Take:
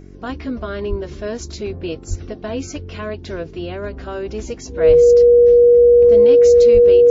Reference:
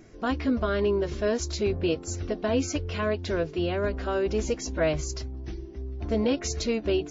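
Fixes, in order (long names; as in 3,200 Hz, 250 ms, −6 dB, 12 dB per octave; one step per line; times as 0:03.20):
hum removal 46.8 Hz, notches 9
notch filter 480 Hz, Q 30
high-pass at the plosives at 0:00.89/0:02.09/0:04.87/0:06.73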